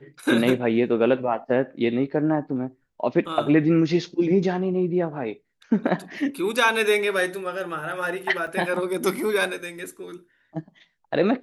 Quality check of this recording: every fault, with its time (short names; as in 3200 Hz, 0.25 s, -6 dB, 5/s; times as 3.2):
8.47 gap 3.4 ms